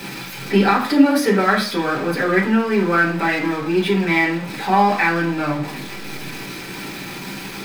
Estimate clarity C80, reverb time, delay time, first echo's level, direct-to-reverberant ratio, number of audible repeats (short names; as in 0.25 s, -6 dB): 14.0 dB, 0.50 s, none, none, -6.5 dB, none